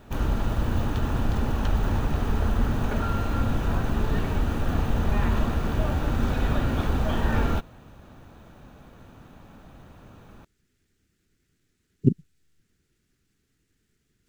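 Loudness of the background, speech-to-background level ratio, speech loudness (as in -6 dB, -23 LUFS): -27.0 LUFS, -2.5 dB, -29.5 LUFS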